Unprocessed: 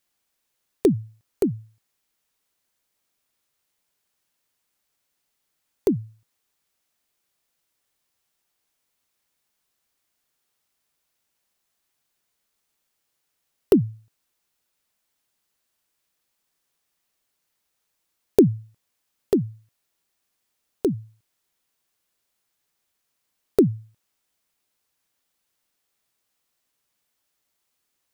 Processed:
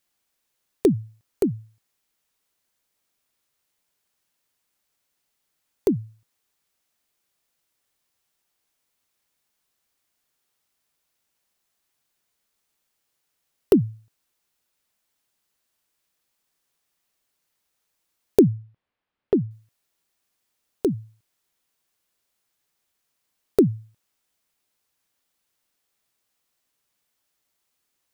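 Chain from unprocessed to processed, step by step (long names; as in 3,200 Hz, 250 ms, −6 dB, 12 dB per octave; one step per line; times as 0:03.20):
0:18.41–0:19.51: Gaussian smoothing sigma 2.7 samples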